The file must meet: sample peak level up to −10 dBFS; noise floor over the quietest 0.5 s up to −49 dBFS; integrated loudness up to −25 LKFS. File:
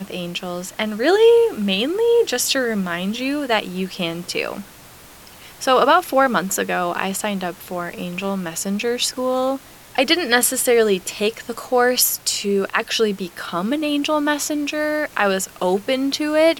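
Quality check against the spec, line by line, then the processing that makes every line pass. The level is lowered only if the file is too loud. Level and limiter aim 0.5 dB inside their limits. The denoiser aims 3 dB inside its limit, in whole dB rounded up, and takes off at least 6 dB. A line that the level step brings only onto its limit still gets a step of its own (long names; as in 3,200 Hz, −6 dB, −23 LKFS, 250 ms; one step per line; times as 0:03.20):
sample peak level −3.0 dBFS: out of spec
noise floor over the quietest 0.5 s −43 dBFS: out of spec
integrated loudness −19.5 LKFS: out of spec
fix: broadband denoise 6 dB, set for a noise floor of −43 dBFS
level −6 dB
brickwall limiter −10.5 dBFS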